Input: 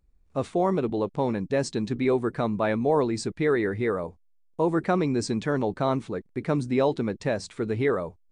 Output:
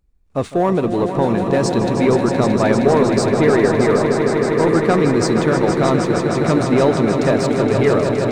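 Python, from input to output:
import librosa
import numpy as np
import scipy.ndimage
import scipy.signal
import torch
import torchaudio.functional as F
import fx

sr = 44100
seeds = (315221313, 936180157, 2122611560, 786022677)

y = fx.leveller(x, sr, passes=1)
y = fx.echo_swell(y, sr, ms=156, loudest=5, wet_db=-8.5)
y = y * 10.0 ** (4.5 / 20.0)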